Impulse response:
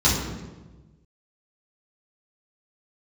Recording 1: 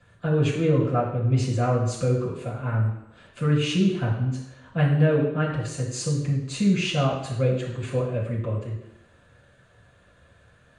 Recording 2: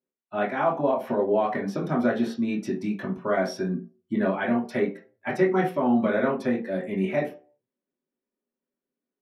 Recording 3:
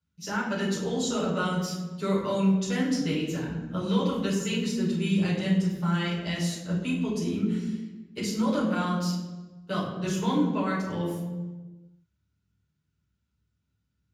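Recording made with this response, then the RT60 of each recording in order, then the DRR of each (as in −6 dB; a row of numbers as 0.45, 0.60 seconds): 3; 0.85, 0.40, 1.2 seconds; −6.0, −5.0, −9.0 decibels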